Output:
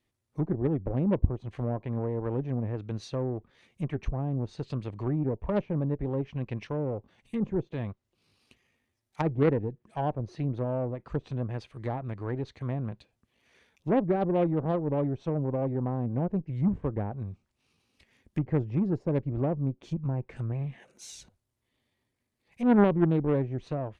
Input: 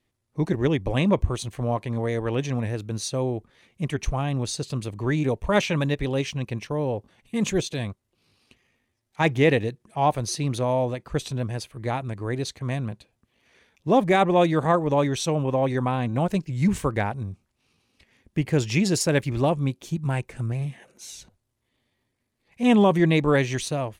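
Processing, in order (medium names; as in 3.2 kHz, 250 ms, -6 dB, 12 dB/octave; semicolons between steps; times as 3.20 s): low-pass that closes with the level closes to 580 Hz, closed at -21 dBFS; Chebyshev shaper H 3 -11 dB, 5 -22 dB, 8 -34 dB, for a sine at -9.5 dBFS; trim +1 dB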